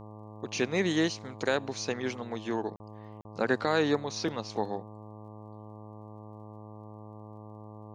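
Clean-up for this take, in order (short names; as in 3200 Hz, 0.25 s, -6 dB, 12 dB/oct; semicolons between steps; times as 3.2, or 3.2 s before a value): de-click; de-hum 106.6 Hz, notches 11; interpolate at 2.76/3.21, 40 ms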